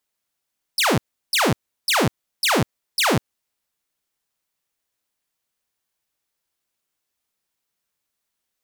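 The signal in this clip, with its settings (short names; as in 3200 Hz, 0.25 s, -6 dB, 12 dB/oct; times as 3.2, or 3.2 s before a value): burst of laser zaps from 5600 Hz, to 94 Hz, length 0.20 s saw, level -13 dB, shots 5, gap 0.35 s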